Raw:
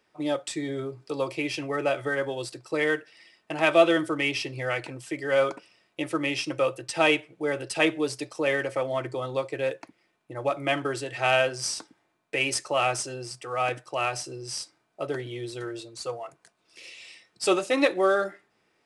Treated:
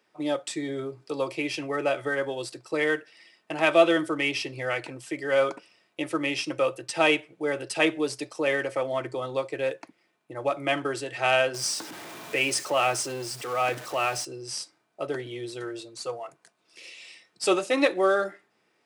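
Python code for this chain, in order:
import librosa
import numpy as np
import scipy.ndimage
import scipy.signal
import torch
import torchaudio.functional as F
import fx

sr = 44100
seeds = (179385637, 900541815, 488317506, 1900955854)

y = fx.zero_step(x, sr, step_db=-35.5, at=(11.54, 14.25))
y = scipy.signal.sosfilt(scipy.signal.butter(2, 140.0, 'highpass', fs=sr, output='sos'), y)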